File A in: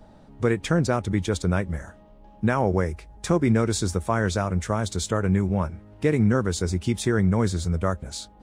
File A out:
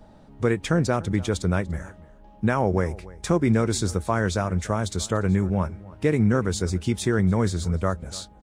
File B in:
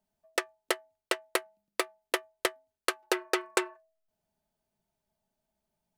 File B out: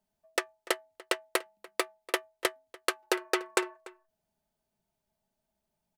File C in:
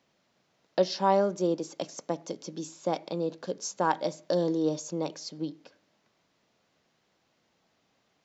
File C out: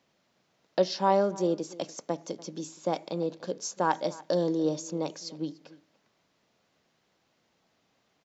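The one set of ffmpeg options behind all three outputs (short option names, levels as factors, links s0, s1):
-filter_complex "[0:a]asplit=2[s0][s1];[s1]adelay=291.5,volume=0.1,highshelf=f=4000:g=-6.56[s2];[s0][s2]amix=inputs=2:normalize=0"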